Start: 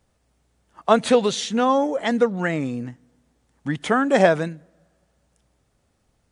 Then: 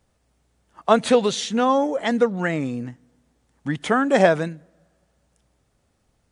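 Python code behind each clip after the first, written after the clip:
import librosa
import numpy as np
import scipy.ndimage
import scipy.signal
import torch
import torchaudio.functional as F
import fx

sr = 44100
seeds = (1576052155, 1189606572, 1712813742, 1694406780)

y = x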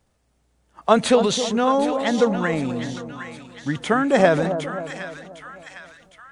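y = fx.echo_split(x, sr, split_hz=1100.0, low_ms=266, high_ms=758, feedback_pct=52, wet_db=-9.5)
y = fx.transient(y, sr, attack_db=2, sustain_db=6)
y = y * librosa.db_to_amplitude(-1.0)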